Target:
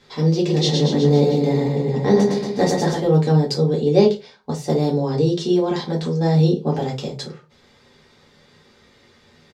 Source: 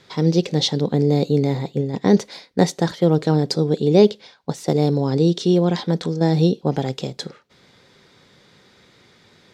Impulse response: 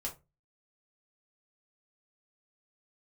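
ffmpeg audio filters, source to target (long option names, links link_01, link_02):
-filter_complex "[0:a]asplit=3[link_01][link_02][link_03];[link_01]afade=type=out:start_time=0.45:duration=0.02[link_04];[link_02]aecho=1:1:110|231|364.1|510.5|671.6:0.631|0.398|0.251|0.158|0.1,afade=type=in:start_time=0.45:duration=0.02,afade=type=out:start_time=2.97:duration=0.02[link_05];[link_03]afade=type=in:start_time=2.97:duration=0.02[link_06];[link_04][link_05][link_06]amix=inputs=3:normalize=0[link_07];[1:a]atrim=start_sample=2205,asetrate=41013,aresample=44100[link_08];[link_07][link_08]afir=irnorm=-1:irlink=0,volume=-1dB"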